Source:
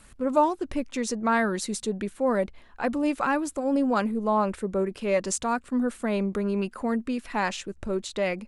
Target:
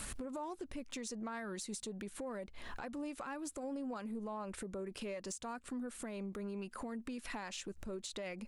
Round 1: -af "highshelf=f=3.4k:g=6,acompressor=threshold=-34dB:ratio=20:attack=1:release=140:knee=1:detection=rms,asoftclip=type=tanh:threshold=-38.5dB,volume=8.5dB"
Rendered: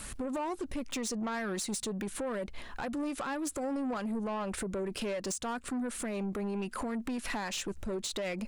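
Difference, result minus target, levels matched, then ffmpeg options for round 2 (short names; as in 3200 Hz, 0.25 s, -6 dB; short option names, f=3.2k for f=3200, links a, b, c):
compressor: peak gain reduction -11 dB
-af "highshelf=f=3.4k:g=6,acompressor=threshold=-45.5dB:ratio=20:attack=1:release=140:knee=1:detection=rms,asoftclip=type=tanh:threshold=-38.5dB,volume=8.5dB"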